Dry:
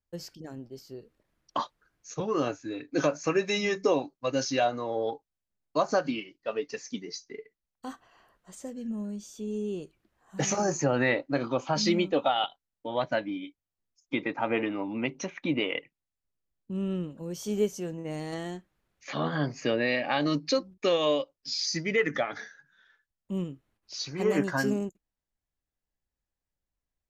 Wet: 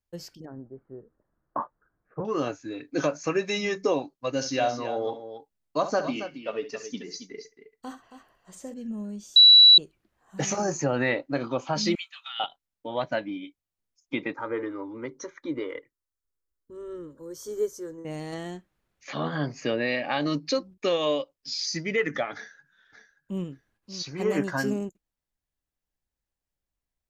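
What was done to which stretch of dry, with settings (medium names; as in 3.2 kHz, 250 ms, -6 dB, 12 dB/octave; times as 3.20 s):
0.45–2.25 s: steep low-pass 1.6 kHz
4.30–8.74 s: multi-tap echo 65/273 ms -11.5/-10.5 dB
9.36–9.78 s: bleep 3.93 kHz -9.5 dBFS
11.95–12.40 s: Bessel high-pass 2.3 kHz, order 8
14.35–18.05 s: static phaser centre 720 Hz, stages 6
22.34–23.44 s: echo throw 580 ms, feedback 15%, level -12 dB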